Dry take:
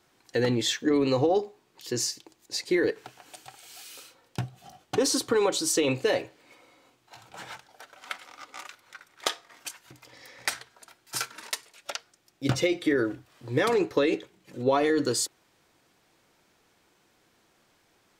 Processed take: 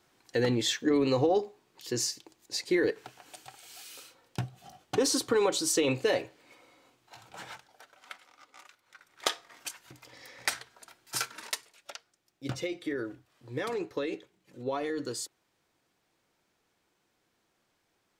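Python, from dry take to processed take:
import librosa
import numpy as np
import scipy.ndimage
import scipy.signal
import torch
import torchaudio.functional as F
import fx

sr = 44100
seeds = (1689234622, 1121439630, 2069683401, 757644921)

y = fx.gain(x, sr, db=fx.line((7.4, -2.0), (8.31, -11.5), (8.82, -11.5), (9.25, -1.0), (11.49, -1.0), (11.92, -9.5)))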